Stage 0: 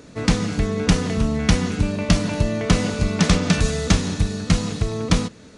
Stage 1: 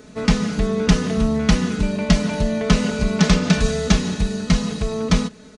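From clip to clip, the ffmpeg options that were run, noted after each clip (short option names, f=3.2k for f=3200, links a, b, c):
-filter_complex "[0:a]aecho=1:1:4.7:0.71,acrossover=split=8200[a][b];[b]acompressor=threshold=-48dB:ratio=4:attack=1:release=60[c];[a][c]amix=inputs=2:normalize=0,volume=-1dB"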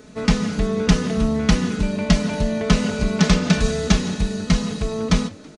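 -filter_complex "[0:a]aeval=exprs='0.841*(cos(1*acos(clip(val(0)/0.841,-1,1)))-cos(1*PI/2))+0.0299*(cos(3*acos(clip(val(0)/0.841,-1,1)))-cos(3*PI/2))':c=same,asplit=5[a][b][c][d][e];[b]adelay=164,afreqshift=58,volume=-23.5dB[f];[c]adelay=328,afreqshift=116,volume=-27.8dB[g];[d]adelay=492,afreqshift=174,volume=-32.1dB[h];[e]adelay=656,afreqshift=232,volume=-36.4dB[i];[a][f][g][h][i]amix=inputs=5:normalize=0"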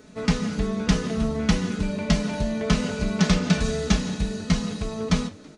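-af "flanger=delay=10:depth=4.8:regen=-55:speed=0.62:shape=sinusoidal"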